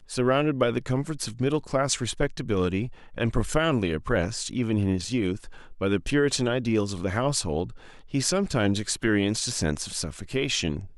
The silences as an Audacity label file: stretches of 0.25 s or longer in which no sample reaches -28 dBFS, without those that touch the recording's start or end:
2.860000	3.180000	silence
5.360000	5.810000	silence
7.640000	8.140000	silence